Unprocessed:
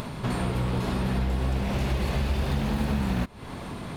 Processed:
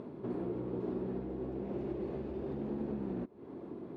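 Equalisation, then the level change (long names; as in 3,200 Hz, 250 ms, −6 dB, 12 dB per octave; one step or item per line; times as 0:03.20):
resonant band-pass 350 Hz, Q 3.5
+1.0 dB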